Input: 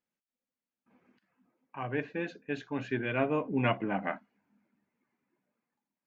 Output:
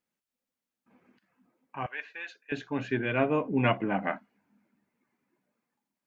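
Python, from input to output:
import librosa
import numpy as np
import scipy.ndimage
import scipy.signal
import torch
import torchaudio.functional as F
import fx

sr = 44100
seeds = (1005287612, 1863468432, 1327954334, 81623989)

y = fx.highpass(x, sr, hz=1400.0, slope=12, at=(1.86, 2.52))
y = F.gain(torch.from_numpy(y), 3.0).numpy()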